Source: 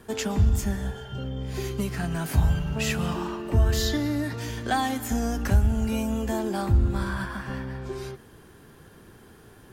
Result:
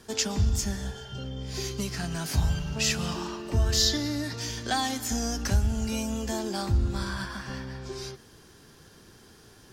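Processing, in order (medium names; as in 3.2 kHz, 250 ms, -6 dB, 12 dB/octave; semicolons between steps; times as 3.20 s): peaking EQ 5.3 kHz +14 dB 1.2 oct; trim -4 dB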